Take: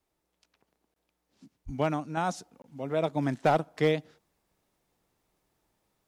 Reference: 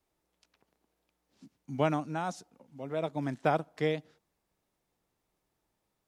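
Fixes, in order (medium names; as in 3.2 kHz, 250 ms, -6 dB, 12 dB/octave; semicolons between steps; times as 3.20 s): clip repair -15 dBFS; 1.65–1.77 s: high-pass 140 Hz 24 dB/octave; interpolate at 0.94/2.62 s, 22 ms; 2.17 s: gain correction -5 dB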